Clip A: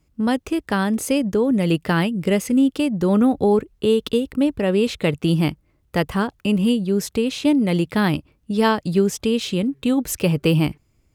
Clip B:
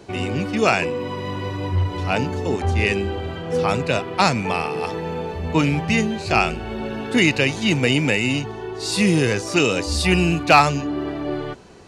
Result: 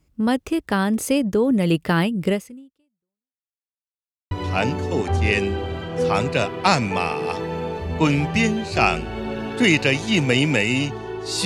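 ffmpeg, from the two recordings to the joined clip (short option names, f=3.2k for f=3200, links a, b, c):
-filter_complex "[0:a]apad=whole_dur=11.45,atrim=end=11.45,asplit=2[a][b];[a]atrim=end=3.43,asetpts=PTS-STARTPTS,afade=t=out:st=2.3:d=1.13:c=exp[c];[b]atrim=start=3.43:end=4.31,asetpts=PTS-STARTPTS,volume=0[d];[1:a]atrim=start=1.85:end=8.99,asetpts=PTS-STARTPTS,afade=t=in:d=0.004:c=hsin[e];[c][d][e]concat=n=3:v=0:a=1"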